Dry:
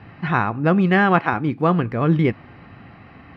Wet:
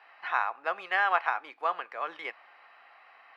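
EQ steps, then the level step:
high-pass filter 690 Hz 24 dB per octave
−6.5 dB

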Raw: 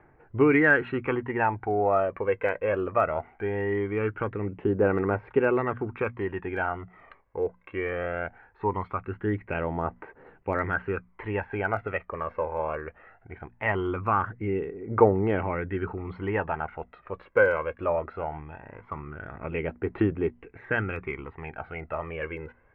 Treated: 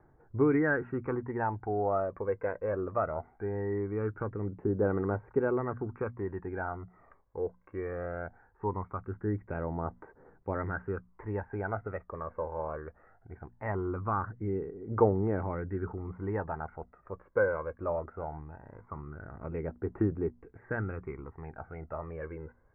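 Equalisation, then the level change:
low-pass filter 1,700 Hz 24 dB per octave
high-frequency loss of the air 360 metres
low-shelf EQ 220 Hz +4 dB
−5.5 dB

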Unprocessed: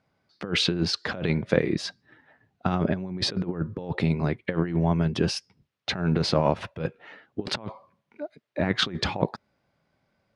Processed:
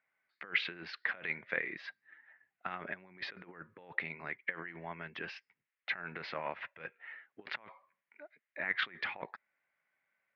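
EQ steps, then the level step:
resonant band-pass 2,000 Hz, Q 3.3
high-frequency loss of the air 250 metres
+3.5 dB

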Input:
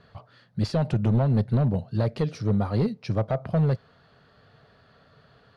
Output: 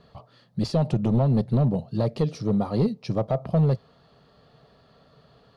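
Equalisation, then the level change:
parametric band 98 Hz −12 dB 0.29 octaves
parametric band 1,900 Hz −7 dB 1.1 octaves
notch filter 1,500 Hz, Q 8.5
+2.5 dB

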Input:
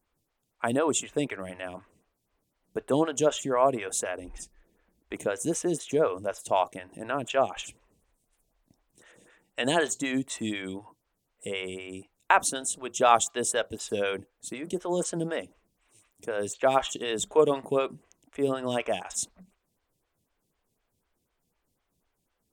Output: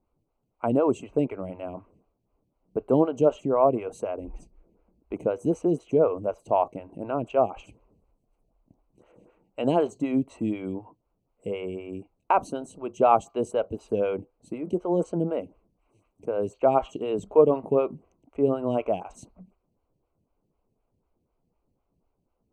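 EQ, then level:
moving average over 25 samples
+5.0 dB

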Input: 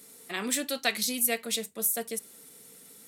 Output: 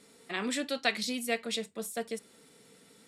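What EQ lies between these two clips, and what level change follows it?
high-frequency loss of the air 87 metres
notch filter 6,200 Hz, Q 13
0.0 dB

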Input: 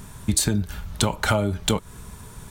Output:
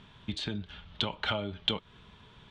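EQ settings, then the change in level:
transistor ladder low-pass 3,600 Hz, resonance 65%
low-shelf EQ 87 Hz −10.5 dB
0.0 dB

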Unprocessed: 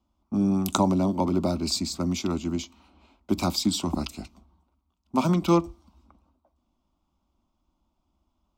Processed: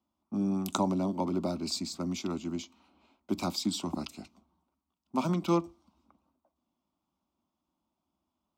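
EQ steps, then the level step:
high-pass filter 130 Hz 12 dB per octave
high-shelf EQ 9,500 Hz −3.5 dB
−6.0 dB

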